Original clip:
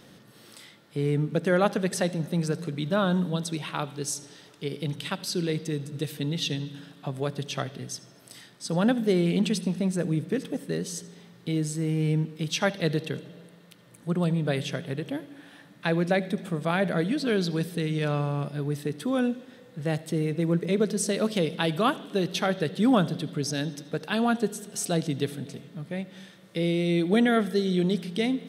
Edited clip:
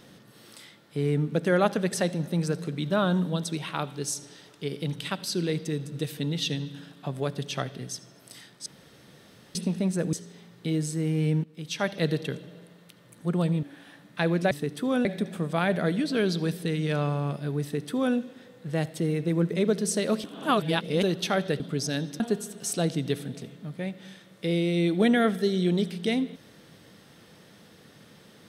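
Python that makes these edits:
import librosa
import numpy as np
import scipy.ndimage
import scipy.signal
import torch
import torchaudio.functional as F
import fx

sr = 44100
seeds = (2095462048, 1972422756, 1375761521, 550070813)

y = fx.edit(x, sr, fx.room_tone_fill(start_s=8.66, length_s=0.89),
    fx.cut(start_s=10.13, length_s=0.82),
    fx.fade_in_from(start_s=12.26, length_s=0.6, floor_db=-15.5),
    fx.cut(start_s=14.45, length_s=0.84),
    fx.duplicate(start_s=18.74, length_s=0.54, to_s=16.17),
    fx.reverse_span(start_s=21.36, length_s=0.79),
    fx.cut(start_s=22.72, length_s=0.52),
    fx.cut(start_s=23.84, length_s=0.48), tone=tone)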